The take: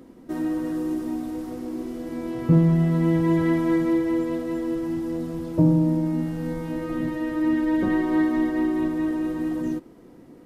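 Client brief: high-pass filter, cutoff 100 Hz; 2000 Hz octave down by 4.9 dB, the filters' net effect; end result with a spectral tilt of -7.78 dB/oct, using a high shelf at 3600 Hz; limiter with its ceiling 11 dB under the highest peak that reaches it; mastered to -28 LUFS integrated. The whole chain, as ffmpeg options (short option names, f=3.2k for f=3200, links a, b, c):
-af "highpass=100,equalizer=f=2k:t=o:g=-7.5,highshelf=f=3.6k:g=8.5,volume=-1dB,alimiter=limit=-19.5dB:level=0:latency=1"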